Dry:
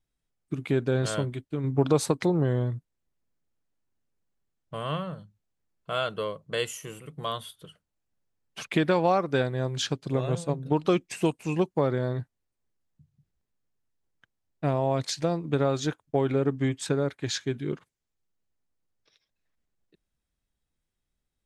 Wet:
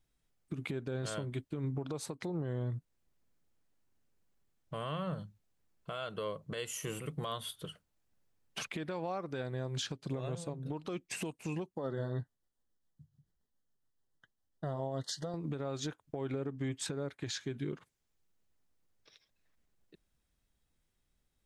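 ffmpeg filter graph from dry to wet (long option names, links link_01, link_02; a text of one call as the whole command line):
ffmpeg -i in.wav -filter_complex "[0:a]asettb=1/sr,asplit=3[link_01][link_02][link_03];[link_01]atrim=end=11.754[link_04];[link_02]atrim=start=11.75:end=15.34,asetpts=PTS-STARTPTS,afade=type=in:duration=0.004:curve=qsin,afade=type=out:start_time=3.586:duration=0.004:curve=qsin,flanger=delay=3.7:depth=4.2:regen=-47:speed=1.1:shape=sinusoidal,tremolo=f=7.1:d=0.43,asuperstop=centerf=2400:order=20:qfactor=2.9[link_05];[link_03]atrim=start=15.336[link_06];[link_04][link_05]acrossfade=duration=0.004:curve1=hsin:curve2=qsin[link_07];[link_07][link_06]acrossfade=duration=0.004:curve1=qsin:curve2=hsin,acompressor=threshold=-35dB:ratio=10,alimiter=level_in=7dB:limit=-24dB:level=0:latency=1:release=90,volume=-7dB,volume=3.5dB" out.wav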